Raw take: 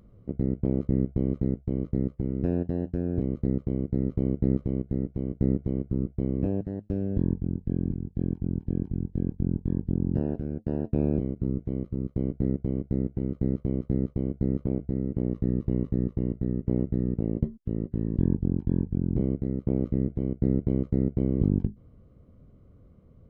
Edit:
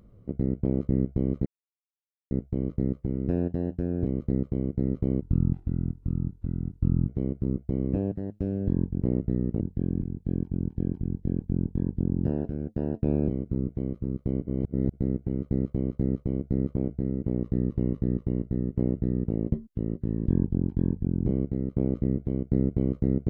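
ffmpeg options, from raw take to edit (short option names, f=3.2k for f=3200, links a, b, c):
-filter_complex "[0:a]asplit=8[a][b][c][d][e][f][g][h];[a]atrim=end=1.46,asetpts=PTS-STARTPTS,afade=t=out:st=1.456:d=0.004:c=hsin,apad=pad_dur=0.85[i];[b]atrim=start=1.46:end=4.364,asetpts=PTS-STARTPTS,afade=t=in:d=0.004:c=hsin[j];[c]atrim=start=4.36:end=5.58,asetpts=PTS-STARTPTS,asetrate=28665,aresample=44100,atrim=end_sample=82772,asetpts=PTS-STARTPTS[k];[d]atrim=start=5.576:end=7.512[l];[e]atrim=start=16.658:end=17.252[m];[f]atrim=start=7.508:end=12.362[n];[g]atrim=start=12.358:end=12.842,asetpts=PTS-STARTPTS,areverse[o];[h]atrim=start=12.838[p];[i][j]concat=n=2:v=0:a=1[q];[q][k]acrossfade=d=0.004:c1=hsin:c2=hsin[r];[r][l]acrossfade=d=0.004:c1=hsin:c2=hsin[s];[s][m]acrossfade=d=0.004:c1=hsin:c2=hsin[t];[t][n]acrossfade=d=0.004:c1=hsin:c2=hsin[u];[u][o]acrossfade=d=0.004:c1=hsin:c2=hsin[v];[v][p]acrossfade=d=0.004:c1=hsin:c2=hsin"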